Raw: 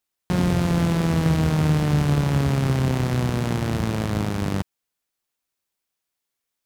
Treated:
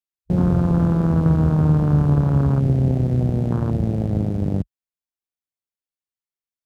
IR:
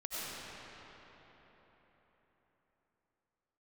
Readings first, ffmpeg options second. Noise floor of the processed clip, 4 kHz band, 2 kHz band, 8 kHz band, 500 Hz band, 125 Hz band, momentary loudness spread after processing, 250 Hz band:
under -85 dBFS, under -15 dB, under -10 dB, under -15 dB, +1.0 dB, +4.0 dB, 6 LU, +3.0 dB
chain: -af "afwtdn=0.0501,lowshelf=f=250:g=5"

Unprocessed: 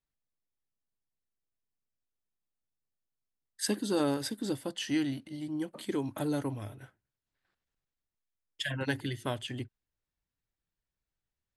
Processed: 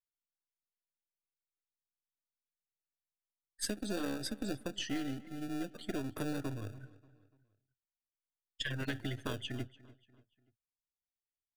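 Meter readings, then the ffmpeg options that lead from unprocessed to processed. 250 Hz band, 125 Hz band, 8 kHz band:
-5.5 dB, -3.5 dB, -4.0 dB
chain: -filter_complex "[0:a]aeval=exprs='if(lt(val(0),0),0.447*val(0),val(0))':c=same,afftdn=nr=18:nf=-48,acrossover=split=340|920|5000[s0][s1][s2][s3];[s1]acrusher=samples=42:mix=1:aa=0.000001[s4];[s0][s4][s2][s3]amix=inputs=4:normalize=0,acompressor=threshold=0.02:ratio=6,asplit=2[s5][s6];[s6]adelay=292,lowpass=f=4500:p=1,volume=0.1,asplit=2[s7][s8];[s8]adelay=292,lowpass=f=4500:p=1,volume=0.43,asplit=2[s9][s10];[s10]adelay=292,lowpass=f=4500:p=1,volume=0.43[s11];[s5][s7][s9][s11]amix=inputs=4:normalize=0,volume=1.19"

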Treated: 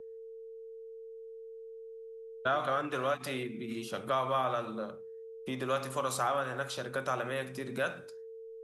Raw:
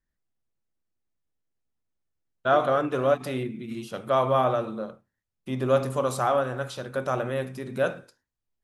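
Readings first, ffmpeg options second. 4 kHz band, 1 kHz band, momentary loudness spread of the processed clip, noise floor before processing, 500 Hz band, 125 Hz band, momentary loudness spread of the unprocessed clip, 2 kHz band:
-1.5 dB, -6.0 dB, 17 LU, -84 dBFS, -9.0 dB, -10.5 dB, 13 LU, -2.5 dB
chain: -filter_complex "[0:a]aeval=exprs='val(0)+0.00631*sin(2*PI*450*n/s)':c=same,acrossover=split=220|960[s0][s1][s2];[s0]acompressor=threshold=0.00398:ratio=4[s3];[s1]acompressor=threshold=0.0141:ratio=4[s4];[s2]acompressor=threshold=0.0316:ratio=4[s5];[s3][s4][s5]amix=inputs=3:normalize=0"

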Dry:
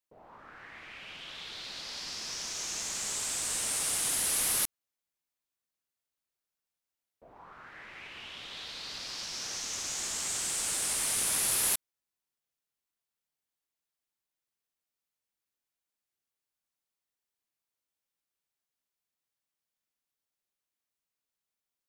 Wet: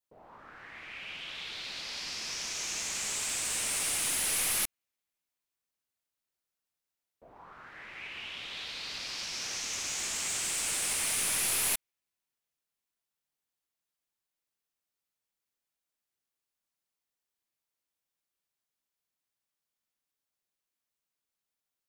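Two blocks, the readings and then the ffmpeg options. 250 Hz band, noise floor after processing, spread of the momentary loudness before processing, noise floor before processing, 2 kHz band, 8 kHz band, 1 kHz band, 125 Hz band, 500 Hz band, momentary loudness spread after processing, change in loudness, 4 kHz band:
-0.5 dB, under -85 dBFS, 19 LU, under -85 dBFS, +3.5 dB, -0.5 dB, 0.0 dB, -0.5 dB, -0.5 dB, 15 LU, -0.5 dB, +1.0 dB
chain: -af "adynamicequalizer=threshold=0.00251:dfrequency=2400:dqfactor=2:tfrequency=2400:tqfactor=2:attack=5:release=100:ratio=0.375:range=3:mode=boostabove:tftype=bell,aeval=exprs='clip(val(0),-1,0.0376)':c=same"

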